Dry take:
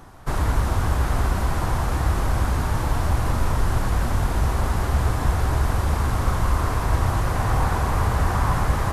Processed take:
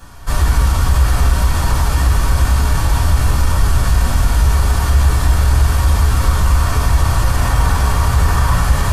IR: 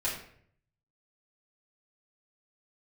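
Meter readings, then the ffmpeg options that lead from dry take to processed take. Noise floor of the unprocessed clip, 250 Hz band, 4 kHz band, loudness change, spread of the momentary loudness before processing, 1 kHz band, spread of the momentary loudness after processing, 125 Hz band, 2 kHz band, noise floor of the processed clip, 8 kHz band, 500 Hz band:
-25 dBFS, +3.5 dB, +10.5 dB, +8.0 dB, 2 LU, +4.5 dB, 2 LU, +8.0 dB, +7.0 dB, -18 dBFS, +11.0 dB, +2.5 dB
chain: -filter_complex "[1:a]atrim=start_sample=2205,asetrate=79380,aresample=44100[a];[0:a][a]afir=irnorm=-1:irlink=0,asplit=2[b][c];[c]alimiter=limit=-11dB:level=0:latency=1:release=37,volume=1.5dB[d];[b][d]amix=inputs=2:normalize=0,highshelf=f=2.3k:g=10,volume=-3.5dB"

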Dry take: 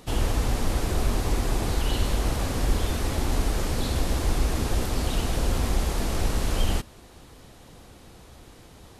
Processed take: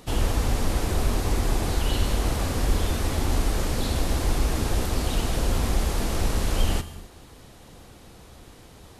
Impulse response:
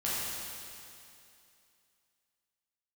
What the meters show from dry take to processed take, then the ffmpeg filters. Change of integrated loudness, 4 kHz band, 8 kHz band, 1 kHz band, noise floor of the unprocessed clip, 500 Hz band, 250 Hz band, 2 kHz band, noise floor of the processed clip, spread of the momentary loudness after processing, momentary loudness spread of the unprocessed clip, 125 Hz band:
+1.0 dB, +1.0 dB, +1.5 dB, +1.0 dB, -50 dBFS, +1.0 dB, +1.0 dB, +1.0 dB, -49 dBFS, 1 LU, 1 LU, +1.0 dB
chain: -filter_complex "[0:a]asplit=2[a][b];[1:a]atrim=start_sample=2205,afade=t=out:st=0.34:d=0.01,atrim=end_sample=15435,highshelf=f=8.7k:g=7[c];[b][c]afir=irnorm=-1:irlink=0,volume=-19dB[d];[a][d]amix=inputs=2:normalize=0"

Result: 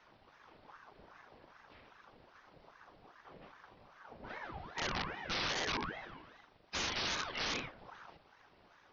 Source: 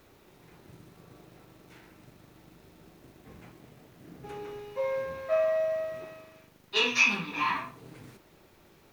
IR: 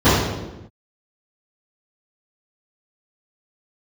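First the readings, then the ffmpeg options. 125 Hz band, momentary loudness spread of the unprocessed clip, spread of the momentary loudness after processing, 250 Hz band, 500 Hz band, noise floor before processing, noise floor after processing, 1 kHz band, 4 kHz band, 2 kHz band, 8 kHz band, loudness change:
-2.5 dB, 19 LU, 23 LU, -5.5 dB, -17.0 dB, -60 dBFS, -65 dBFS, -6.5 dB, -4.0 dB, -9.5 dB, -3.0 dB, -9.5 dB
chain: -af "afftfilt=real='hypot(re,im)*cos(2*PI*random(0))':imag='hypot(re,im)*sin(2*PI*random(1))':win_size=512:overlap=0.75,aresample=11025,aeval=exprs='(mod(39.8*val(0)+1,2)-1)/39.8':c=same,aresample=44100,acontrast=87,aeval=exprs='val(0)*sin(2*PI*860*n/s+860*0.65/2.5*sin(2*PI*2.5*n/s))':c=same,volume=-3.5dB"

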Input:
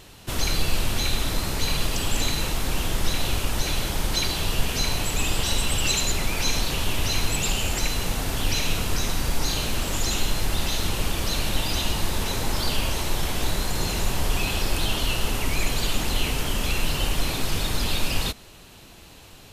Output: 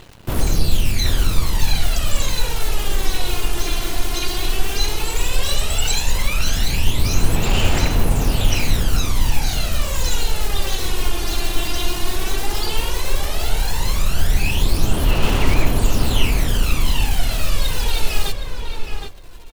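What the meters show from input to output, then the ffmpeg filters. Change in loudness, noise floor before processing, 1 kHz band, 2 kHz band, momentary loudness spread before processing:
+3.5 dB, -47 dBFS, +3.0 dB, +2.5 dB, 3 LU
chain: -filter_complex "[0:a]aphaser=in_gain=1:out_gain=1:delay=2.9:decay=0.69:speed=0.13:type=sinusoidal,acrusher=bits=6:dc=4:mix=0:aa=0.000001,asplit=2[a][b];[b]adelay=767,lowpass=f=2.3k:p=1,volume=-4.5dB,asplit=2[c][d];[d]adelay=767,lowpass=f=2.3k:p=1,volume=0.18,asplit=2[e][f];[f]adelay=767,lowpass=f=2.3k:p=1,volume=0.18[g];[c][e][g]amix=inputs=3:normalize=0[h];[a][h]amix=inputs=2:normalize=0,volume=-1.5dB"

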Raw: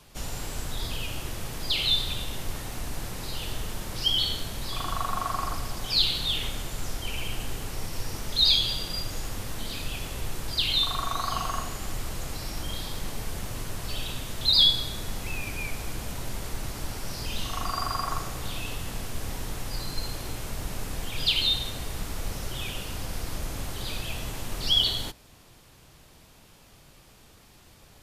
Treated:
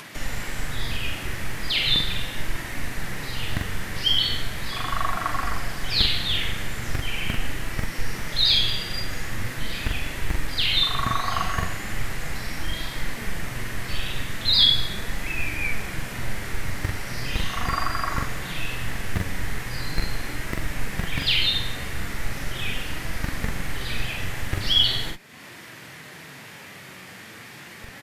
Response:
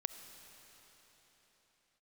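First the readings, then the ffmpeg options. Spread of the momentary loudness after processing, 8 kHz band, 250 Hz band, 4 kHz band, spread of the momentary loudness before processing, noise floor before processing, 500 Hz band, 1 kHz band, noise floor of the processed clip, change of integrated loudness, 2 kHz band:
13 LU, -0.5 dB, +5.0 dB, +2.5 dB, 14 LU, -54 dBFS, +2.5 dB, +3.5 dB, -43 dBFS, +3.0 dB, +9.5 dB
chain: -filter_complex "[0:a]acrossover=split=120[a][b];[a]acrusher=bits=5:dc=4:mix=0:aa=0.000001[c];[c][b]amix=inputs=2:normalize=0,flanger=delay=3:depth=7.7:regen=68:speed=0.39:shape=sinusoidal,equalizer=f=1.9k:w=1.5:g=14.5,asplit=2[d][e];[e]adelay=43,volume=-3dB[f];[d][f]amix=inputs=2:normalize=0,acompressor=mode=upward:threshold=-34dB:ratio=2.5,lowshelf=f=290:g=7.5,volume=1.5dB"

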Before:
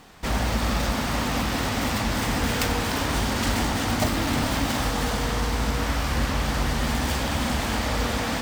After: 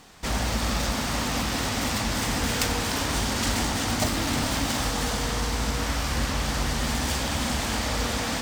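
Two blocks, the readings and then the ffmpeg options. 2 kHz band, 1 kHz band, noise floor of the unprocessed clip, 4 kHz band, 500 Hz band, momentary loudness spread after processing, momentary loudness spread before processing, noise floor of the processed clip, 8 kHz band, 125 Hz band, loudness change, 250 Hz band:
-1.5 dB, -2.0 dB, -27 dBFS, +1.0 dB, -2.5 dB, 2 LU, 2 LU, -29 dBFS, +3.0 dB, -2.5 dB, -1.0 dB, -2.5 dB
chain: -af "equalizer=f=6.9k:t=o:w=1.8:g=6,volume=-2.5dB"

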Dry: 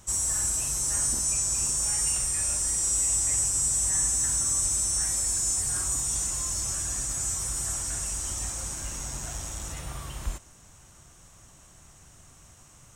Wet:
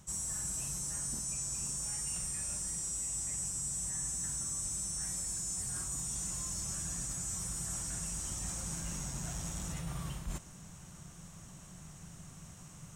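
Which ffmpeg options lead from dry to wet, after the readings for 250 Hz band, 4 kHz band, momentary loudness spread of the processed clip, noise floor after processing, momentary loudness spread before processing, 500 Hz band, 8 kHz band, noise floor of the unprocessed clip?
-0.5 dB, -10.0 dB, 17 LU, -52 dBFS, 12 LU, -8.0 dB, -11.0 dB, -54 dBFS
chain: -af "equalizer=f=170:t=o:w=0.6:g=14.5,areverse,acompressor=threshold=-35dB:ratio=5,areverse,volume=-1dB"

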